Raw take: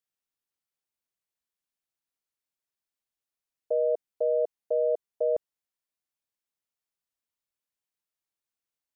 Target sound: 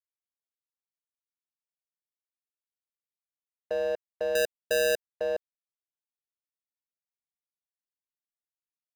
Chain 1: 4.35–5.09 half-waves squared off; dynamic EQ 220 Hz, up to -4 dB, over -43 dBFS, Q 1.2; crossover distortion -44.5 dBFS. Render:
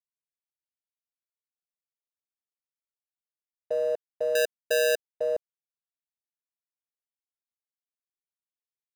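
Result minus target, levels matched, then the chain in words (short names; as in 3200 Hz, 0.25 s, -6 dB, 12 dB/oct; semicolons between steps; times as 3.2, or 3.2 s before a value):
crossover distortion: distortion -10 dB
4.35–5.09 half-waves squared off; dynamic EQ 220 Hz, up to -4 dB, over -43 dBFS, Q 1.2; crossover distortion -34 dBFS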